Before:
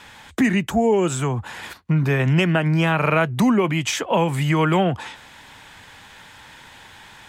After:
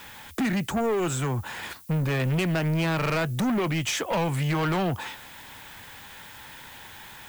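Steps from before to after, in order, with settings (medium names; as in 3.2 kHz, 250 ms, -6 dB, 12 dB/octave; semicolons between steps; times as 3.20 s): saturation -21 dBFS, distortion -9 dB; added noise violet -50 dBFS; trim -1 dB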